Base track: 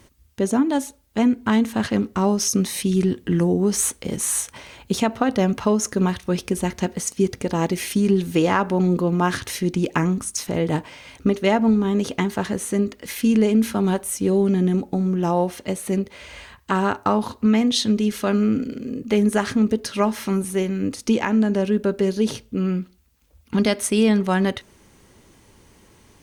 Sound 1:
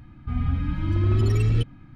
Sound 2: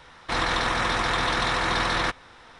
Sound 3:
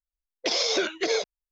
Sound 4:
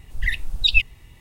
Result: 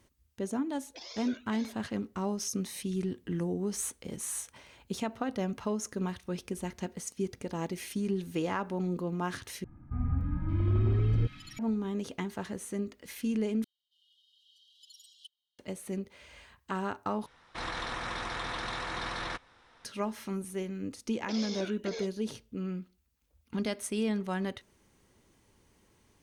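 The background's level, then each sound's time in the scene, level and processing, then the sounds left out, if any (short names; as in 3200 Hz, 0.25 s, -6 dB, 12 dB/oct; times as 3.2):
base track -13.5 dB
0.5 add 3 -16.5 dB + cascading flanger rising 1.7 Hz
9.64 replace with 1 -6 dB + bands offset in time lows, highs 0.57 s, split 1700 Hz
13.64 replace with 1 -10 dB + brick-wall FIR high-pass 2800 Hz
17.26 replace with 2 -12 dB
20.83 add 3 -15.5 dB
not used: 4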